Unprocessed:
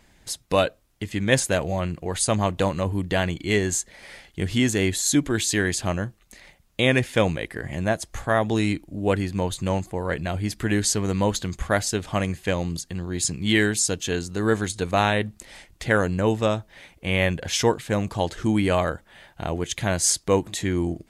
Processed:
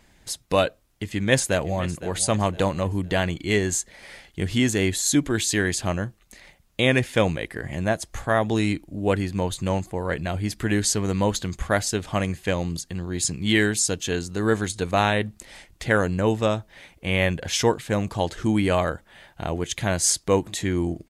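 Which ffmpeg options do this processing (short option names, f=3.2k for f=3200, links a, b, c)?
-filter_complex "[0:a]asplit=2[a][b];[b]afade=t=in:st=1.13:d=0.01,afade=t=out:st=2.1:d=0.01,aecho=0:1:510|1020|1530:0.158489|0.0554713|0.0194149[c];[a][c]amix=inputs=2:normalize=0"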